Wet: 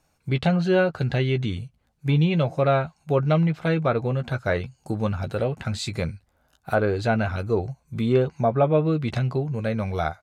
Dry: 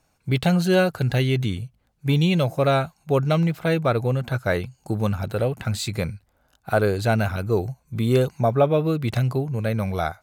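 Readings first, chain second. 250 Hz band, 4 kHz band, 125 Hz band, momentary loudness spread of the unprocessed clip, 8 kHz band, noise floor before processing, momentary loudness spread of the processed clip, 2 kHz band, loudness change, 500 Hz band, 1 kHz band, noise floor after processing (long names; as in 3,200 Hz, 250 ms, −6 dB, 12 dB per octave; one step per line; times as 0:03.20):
−1.0 dB, −4.0 dB, −1.5 dB, 7 LU, −6.0 dB, −67 dBFS, 8 LU, −1.5 dB, −1.5 dB, −1.0 dB, −1.0 dB, −68 dBFS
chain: treble cut that deepens with the level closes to 2,600 Hz, closed at −15 dBFS
double-tracking delay 13 ms −10 dB
level −1.5 dB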